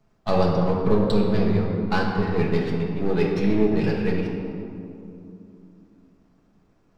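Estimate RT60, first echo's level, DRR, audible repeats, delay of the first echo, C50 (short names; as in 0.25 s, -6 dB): 2.7 s, none, -3.5 dB, none, none, 1.5 dB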